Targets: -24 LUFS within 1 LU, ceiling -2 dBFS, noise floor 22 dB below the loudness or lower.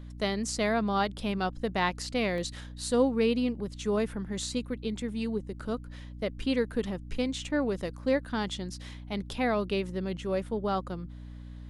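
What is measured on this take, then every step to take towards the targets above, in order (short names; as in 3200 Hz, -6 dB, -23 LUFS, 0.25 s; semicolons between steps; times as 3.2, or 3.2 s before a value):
dropouts 1; longest dropout 1.2 ms; hum 60 Hz; harmonics up to 300 Hz; hum level -41 dBFS; loudness -31.0 LUFS; peak -13.0 dBFS; loudness target -24.0 LUFS
-> interpolate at 2.38, 1.2 ms; notches 60/120/180/240/300 Hz; gain +7 dB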